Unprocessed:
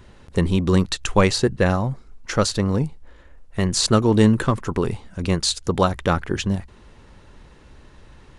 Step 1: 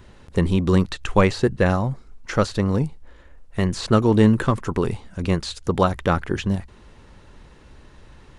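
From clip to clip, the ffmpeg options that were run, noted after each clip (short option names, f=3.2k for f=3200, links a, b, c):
-filter_complex "[0:a]acrossover=split=3000[a][b];[b]acompressor=threshold=-35dB:ratio=4:attack=1:release=60[c];[a][c]amix=inputs=2:normalize=0"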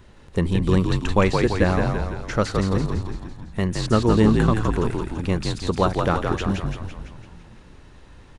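-filter_complex "[0:a]asplit=9[a][b][c][d][e][f][g][h][i];[b]adelay=168,afreqshift=-53,volume=-4dB[j];[c]adelay=336,afreqshift=-106,volume=-8.7dB[k];[d]adelay=504,afreqshift=-159,volume=-13.5dB[l];[e]adelay=672,afreqshift=-212,volume=-18.2dB[m];[f]adelay=840,afreqshift=-265,volume=-22.9dB[n];[g]adelay=1008,afreqshift=-318,volume=-27.7dB[o];[h]adelay=1176,afreqshift=-371,volume=-32.4dB[p];[i]adelay=1344,afreqshift=-424,volume=-37.1dB[q];[a][j][k][l][m][n][o][p][q]amix=inputs=9:normalize=0,volume=-2dB"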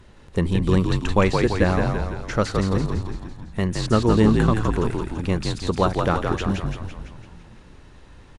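-af "aresample=32000,aresample=44100"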